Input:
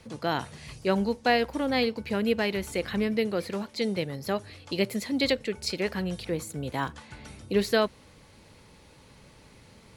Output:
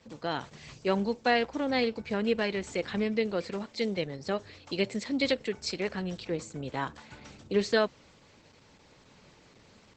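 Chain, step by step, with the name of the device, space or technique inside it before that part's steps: video call (HPF 140 Hz 6 dB/oct; AGC gain up to 3 dB; gain -4 dB; Opus 12 kbps 48000 Hz)

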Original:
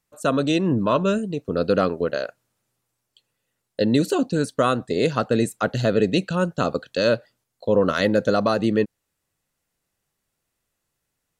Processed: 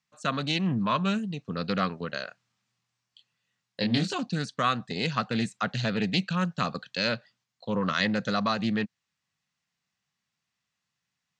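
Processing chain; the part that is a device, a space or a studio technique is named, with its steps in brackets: full-range speaker at full volume (Doppler distortion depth 0.17 ms; speaker cabinet 160–6300 Hz, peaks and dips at 260 Hz -7 dB, 750 Hz +9 dB, 1400 Hz -5 dB); band shelf 520 Hz -14.5 dB; 2.25–4.13 doubler 25 ms -4 dB

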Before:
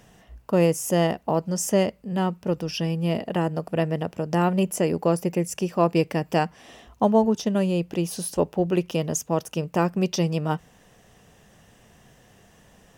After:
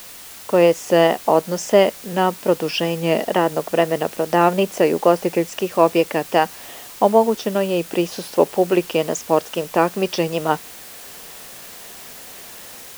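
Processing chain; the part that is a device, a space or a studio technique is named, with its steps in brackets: dictaphone (BPF 340–3900 Hz; AGC; wow and flutter; white noise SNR 19 dB)

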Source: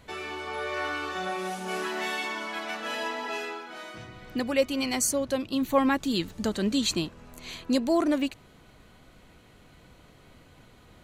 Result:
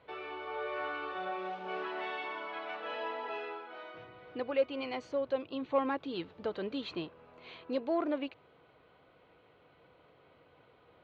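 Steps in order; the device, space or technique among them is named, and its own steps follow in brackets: overdrive pedal into a guitar cabinet (overdrive pedal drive 11 dB, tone 1400 Hz, clips at -12 dBFS; speaker cabinet 86–3800 Hz, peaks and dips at 220 Hz -9 dB, 480 Hz +6 dB, 1800 Hz -5 dB); gain -8 dB

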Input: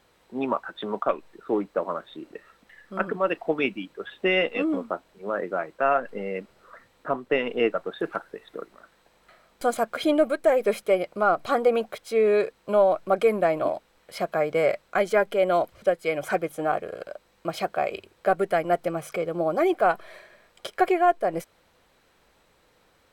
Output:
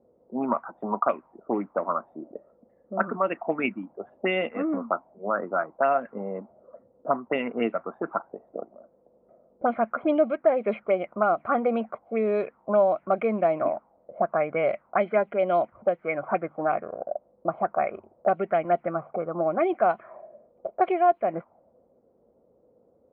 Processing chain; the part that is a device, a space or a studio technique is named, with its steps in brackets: envelope filter bass rig (envelope low-pass 480–4300 Hz up, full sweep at -17 dBFS; speaker cabinet 75–2100 Hz, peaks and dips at 230 Hz +8 dB, 450 Hz -4 dB, 670 Hz +4 dB, 1700 Hz -9 dB); gain -3 dB

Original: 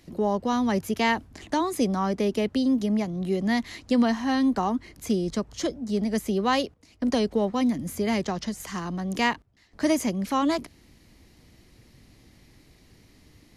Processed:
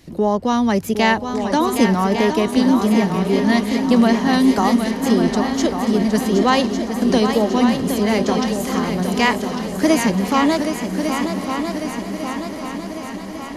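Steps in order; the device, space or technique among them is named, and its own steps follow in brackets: multi-head tape echo (multi-head echo 0.383 s, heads second and third, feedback 64%, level -8 dB; wow and flutter 47 cents); 4.33–4.91 high shelf 6800 Hz +11.5 dB; diffused feedback echo 1.103 s, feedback 64%, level -15 dB; gain +7 dB

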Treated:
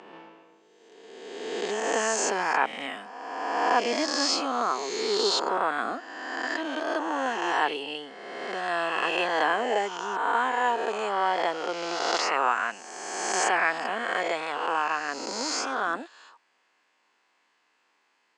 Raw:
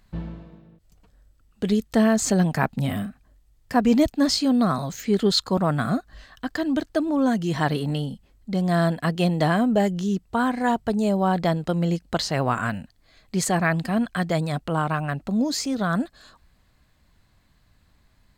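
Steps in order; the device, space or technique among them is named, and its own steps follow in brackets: spectral swells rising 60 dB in 1.76 s; phone speaker on a table (speaker cabinet 390–7000 Hz, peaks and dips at 610 Hz -8 dB, 880 Hz +4 dB, 2700 Hz +5 dB, 4000 Hz -9 dB); gain -3 dB

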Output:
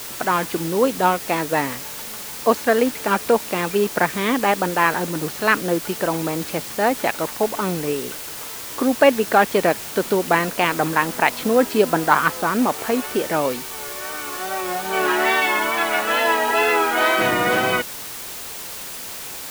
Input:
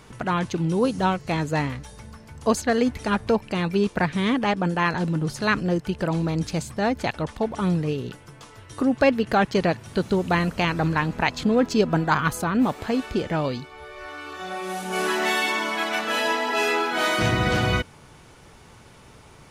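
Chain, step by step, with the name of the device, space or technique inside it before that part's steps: wax cylinder (BPF 320–2800 Hz; wow and flutter; white noise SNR 12 dB); gain +6 dB

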